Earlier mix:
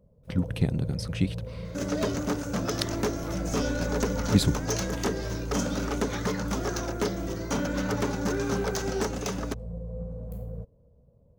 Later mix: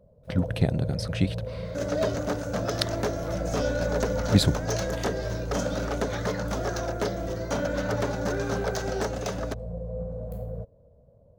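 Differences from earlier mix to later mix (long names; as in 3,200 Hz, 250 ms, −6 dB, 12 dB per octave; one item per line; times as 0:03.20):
second sound −4.0 dB
master: add graphic EQ with 15 bands 100 Hz +3 dB, 630 Hz +11 dB, 1,600 Hz +5 dB, 4,000 Hz +4 dB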